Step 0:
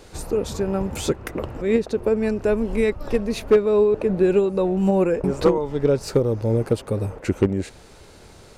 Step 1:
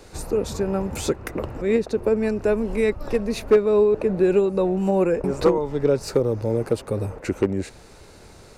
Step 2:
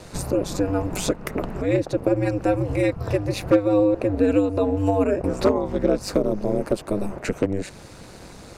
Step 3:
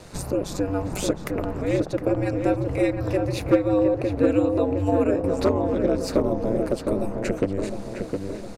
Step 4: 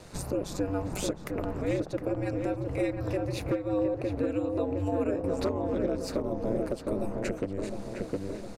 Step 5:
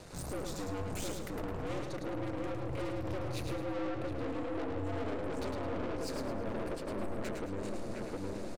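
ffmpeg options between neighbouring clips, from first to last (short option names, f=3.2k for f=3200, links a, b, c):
-filter_complex "[0:a]acrossover=split=260[a][b];[a]alimiter=limit=-23dB:level=0:latency=1[c];[c][b]amix=inputs=2:normalize=0,equalizer=f=3.2k:w=6.3:g=-5"
-filter_complex "[0:a]asplit=2[a][b];[b]acompressor=threshold=-29dB:ratio=6,volume=2dB[c];[a][c]amix=inputs=2:normalize=0,aeval=exprs='val(0)*sin(2*PI*100*n/s)':c=same"
-filter_complex "[0:a]asplit=2[a][b];[b]adelay=711,lowpass=f=1.7k:p=1,volume=-4.5dB,asplit=2[c][d];[d]adelay=711,lowpass=f=1.7k:p=1,volume=0.53,asplit=2[e][f];[f]adelay=711,lowpass=f=1.7k:p=1,volume=0.53,asplit=2[g][h];[h]adelay=711,lowpass=f=1.7k:p=1,volume=0.53,asplit=2[i][j];[j]adelay=711,lowpass=f=1.7k:p=1,volume=0.53,asplit=2[k][l];[l]adelay=711,lowpass=f=1.7k:p=1,volume=0.53,asplit=2[m][n];[n]adelay=711,lowpass=f=1.7k:p=1,volume=0.53[o];[a][c][e][g][i][k][m][o]amix=inputs=8:normalize=0,volume=-2.5dB"
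-af "alimiter=limit=-14dB:level=0:latency=1:release=389,volume=-4.5dB"
-af "aeval=exprs='(tanh(63.1*val(0)+0.45)-tanh(0.45))/63.1':c=same,aecho=1:1:107|214|321|428:0.562|0.191|0.065|0.0221"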